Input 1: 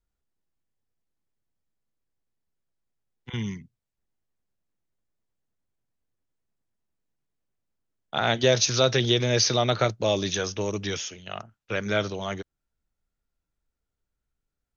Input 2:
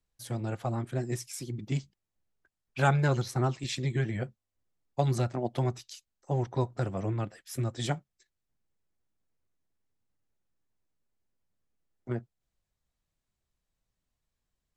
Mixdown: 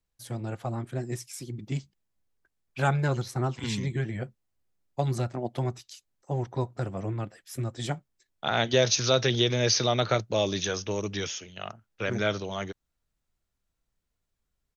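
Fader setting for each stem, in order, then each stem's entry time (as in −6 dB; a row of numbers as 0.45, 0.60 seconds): −2.0, −0.5 decibels; 0.30, 0.00 seconds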